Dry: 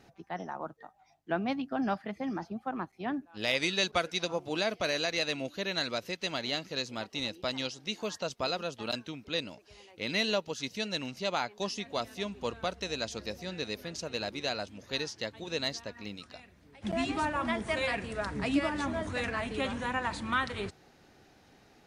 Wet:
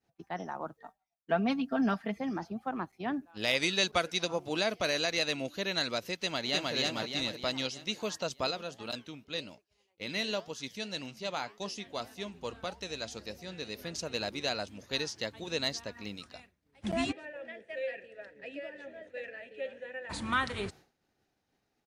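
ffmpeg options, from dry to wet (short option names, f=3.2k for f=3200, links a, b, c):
-filter_complex "[0:a]asettb=1/sr,asplit=3[a][b][c];[a]atrim=end=0.844[d];[b]atrim=start=0.84:end=2.19,asetpts=PTS-STARTPTS,afade=t=in:d=0.004:c=qsin,afade=t=out:st=1.346:d=0.004:c=qsin,aecho=1:1:4.4:0.65,atrim=end_sample=59535[e];[c]atrim=start=2.186[f];[d][e]acrossfade=d=0.004:c1=hsin:c2=qsin[g];[g][f]acrossfade=d=0.004:c1=qsin:c2=hsin,asplit=2[h][i];[i]afade=t=in:st=6.16:d=0.01,afade=t=out:st=6.74:d=0.01,aecho=0:1:310|620|930|1240|1550|1860|2170:0.944061|0.47203|0.236015|0.118008|0.0590038|0.0295019|0.014751[j];[h][j]amix=inputs=2:normalize=0,asplit=3[k][l][m];[k]afade=t=out:st=8.5:d=0.02[n];[l]flanger=delay=5.6:depth=5.5:regen=-85:speed=1.8:shape=triangular,afade=t=in:st=8.5:d=0.02,afade=t=out:st=13.77:d=0.02[o];[m]afade=t=in:st=13.77:d=0.02[p];[n][o][p]amix=inputs=3:normalize=0,asplit=3[q][r][s];[q]afade=t=out:st=17.11:d=0.02[t];[r]asplit=3[u][v][w];[u]bandpass=f=530:t=q:w=8,volume=0dB[x];[v]bandpass=f=1.84k:t=q:w=8,volume=-6dB[y];[w]bandpass=f=2.48k:t=q:w=8,volume=-9dB[z];[x][y][z]amix=inputs=3:normalize=0,afade=t=in:st=17.11:d=0.02,afade=t=out:st=20.09:d=0.02[aa];[s]afade=t=in:st=20.09:d=0.02[ab];[t][aa][ab]amix=inputs=3:normalize=0,highshelf=f=7.8k:g=5.5,agate=range=-33dB:threshold=-47dB:ratio=3:detection=peak"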